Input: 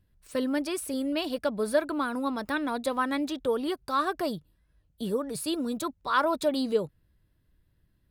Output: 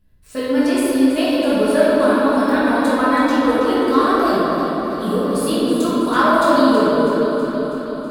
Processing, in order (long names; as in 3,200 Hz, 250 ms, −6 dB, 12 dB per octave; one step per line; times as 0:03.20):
on a send: delay that swaps between a low-pass and a high-pass 162 ms, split 1,200 Hz, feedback 82%, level −8 dB
on the sum: rectangular room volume 180 cubic metres, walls hard, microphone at 1.5 metres
level +1 dB